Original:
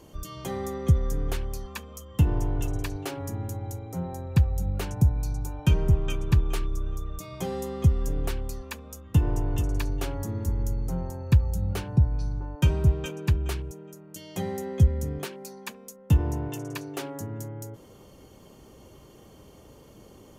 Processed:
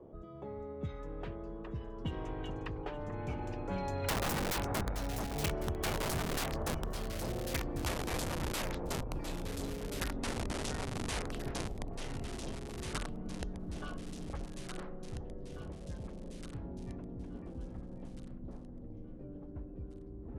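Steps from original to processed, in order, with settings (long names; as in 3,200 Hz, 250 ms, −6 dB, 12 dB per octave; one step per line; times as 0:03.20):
source passing by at 0:04.35, 22 m/s, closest 4.4 metres
low-pass that shuts in the quiet parts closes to 520 Hz, open at −34.5 dBFS
bass and treble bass −9 dB, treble −8 dB
mains-hum notches 60/120/180/240/300 Hz
wrap-around overflow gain 35 dB
delay that swaps between a low-pass and a high-pass 435 ms, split 1,600 Hz, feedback 51%, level −9 dB
delay with pitch and tempo change per echo 687 ms, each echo −4 semitones, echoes 3
multiband upward and downward compressor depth 70%
level +10 dB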